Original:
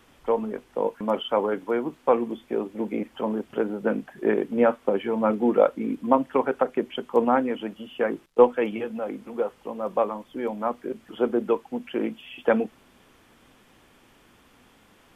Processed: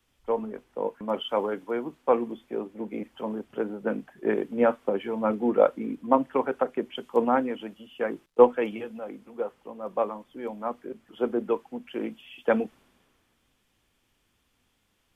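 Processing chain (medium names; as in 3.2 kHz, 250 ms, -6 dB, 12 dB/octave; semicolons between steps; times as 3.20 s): three bands expanded up and down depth 40%; trim -3.5 dB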